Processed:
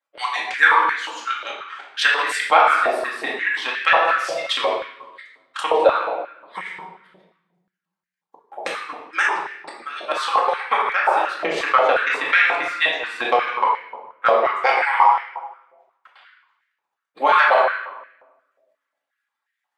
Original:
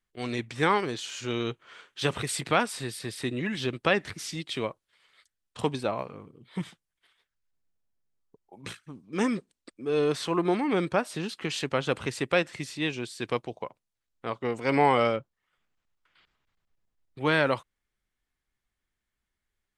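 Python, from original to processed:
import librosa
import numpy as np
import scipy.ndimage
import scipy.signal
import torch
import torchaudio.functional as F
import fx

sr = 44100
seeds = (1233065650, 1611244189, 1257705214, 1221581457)

p1 = fx.hpss_only(x, sr, part='percussive')
p2 = fx.high_shelf(p1, sr, hz=3600.0, db=-7.5)
p3 = fx.transient(p2, sr, attack_db=11, sustain_db=-4)
p4 = fx.room_shoebox(p3, sr, seeds[0], volume_m3=560.0, walls='mixed', distance_m=2.2)
p5 = fx.over_compress(p4, sr, threshold_db=-22.0, ratio=-1.0)
p6 = p4 + (p5 * 10.0 ** (-1.5 / 20.0))
p7 = fx.filter_held_highpass(p6, sr, hz=5.6, low_hz=640.0, high_hz=1800.0)
y = p7 * 10.0 ** (-3.5 / 20.0)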